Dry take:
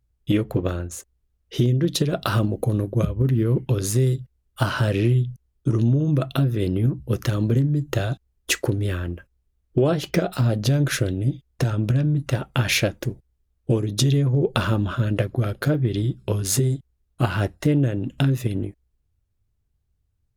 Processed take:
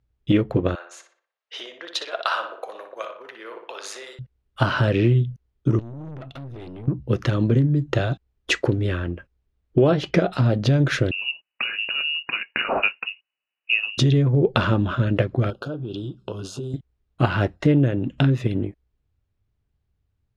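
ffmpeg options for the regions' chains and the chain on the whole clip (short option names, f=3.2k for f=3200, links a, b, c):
-filter_complex "[0:a]asettb=1/sr,asplit=3[a][b][c];[a]atrim=end=0.754[d];[b]atrim=start=0.75:end=4.19,asetpts=PTS-STARTPTS,afade=t=in:d=0.004:c=qsin,afade=t=out:st=3.436:d=0.004:c=qsin,highpass=f=690:w=0.5412,highpass=f=690:w=1.3066,asplit=2[e][f];[f]adelay=60,lowpass=f=3.1k:p=1,volume=-6dB,asplit=2[g][h];[h]adelay=60,lowpass=f=3.1k:p=1,volume=0.5,asplit=2[i][j];[j]adelay=60,lowpass=f=3.1k:p=1,volume=0.5,asplit=2[k][l];[l]adelay=60,lowpass=f=3.1k:p=1,volume=0.5,asplit=2[m][n];[n]adelay=60,lowpass=f=3.1k:p=1,volume=0.5,asplit=2[o][p];[p]adelay=60,lowpass=f=3.1k:p=1,volume=0.5[q];[e][g][i][k][m][o][q]amix=inputs=7:normalize=0,atrim=end_sample=151704[r];[c]atrim=start=4.186[s];[d][r]acrossfade=d=0.004:c1=hsin:c2=qsin[t];[t][s]acrossfade=d=0.004:c1=qsin:c2=hsin,asettb=1/sr,asplit=3[u][v][w];[u]atrim=end=5.794[x];[v]atrim=start=5.79:end=6.88,asetpts=PTS-STARTPTS,afade=t=in:d=0.004:c=qsin,afade=t=out:st=1.086:d=0.004:c=qsin,acompressor=threshold=-27dB:ratio=6:attack=3.2:release=140:knee=1:detection=peak,aeval=exprs='(tanh(56.2*val(0)+0.65)-tanh(0.65))/56.2':c=same[y];[w]atrim=start=6.876[z];[x][y]acrossfade=d=0.004:c1=hsin:c2=qsin[aa];[aa][z]acrossfade=d=0.004:c1=qsin:c2=hsin,asettb=1/sr,asplit=3[ab][ac][ad];[ab]atrim=end=11.114[ae];[ac]atrim=start=11.11:end=13.98,asetpts=PTS-STARTPTS,afade=t=in:d=0.004:c=qsin,afade=t=out:st=2.866:d=0.004:c=qsin,highpass=250,lowpass=f=2.6k:t=q:w=0.5098,lowpass=f=2.6k:t=q:w=0.6013,lowpass=f=2.6k:t=q:w=0.9,lowpass=f=2.6k:t=q:w=2.563,afreqshift=-3000[af];[ad]atrim=start=13.976[ag];[ae][af]acrossfade=d=0.004:c1=hsin:c2=qsin[ah];[ah][ag]acrossfade=d=0.004:c1=qsin:c2=hsin,asettb=1/sr,asplit=3[ai][aj][ak];[ai]atrim=end=15.504[al];[aj]atrim=start=15.5:end=16.74,asetpts=PTS-STARTPTS,afade=t=in:d=0.004:c=qsin,afade=t=out:st=1.236:d=0.004:c=qsin,lowshelf=f=160:g=-10.5,acompressor=threshold=-29dB:ratio=4:attack=3.2:release=140:knee=1:detection=peak,asuperstop=centerf=2000:order=8:qfactor=1.8[am];[ak]atrim=start=16.736[an];[al][am]acrossfade=d=0.004:c1=hsin:c2=qsin[ao];[ao][an]acrossfade=d=0.004:c1=qsin:c2=hsin,lowpass=3.8k,lowshelf=f=80:g=-7,volume=3dB"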